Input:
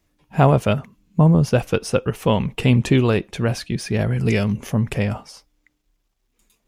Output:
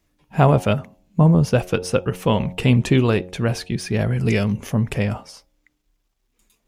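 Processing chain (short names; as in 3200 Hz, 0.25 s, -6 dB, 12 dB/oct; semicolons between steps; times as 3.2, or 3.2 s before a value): de-hum 90.82 Hz, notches 10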